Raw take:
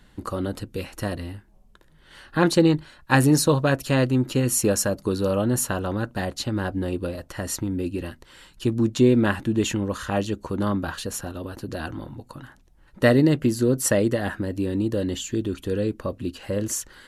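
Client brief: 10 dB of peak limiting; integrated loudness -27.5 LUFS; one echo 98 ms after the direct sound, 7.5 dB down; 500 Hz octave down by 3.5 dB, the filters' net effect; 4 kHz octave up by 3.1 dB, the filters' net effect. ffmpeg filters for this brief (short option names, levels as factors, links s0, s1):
-af "equalizer=f=500:t=o:g=-4.5,equalizer=f=4000:t=o:g=4,alimiter=limit=0.211:level=0:latency=1,aecho=1:1:98:0.422,volume=0.794"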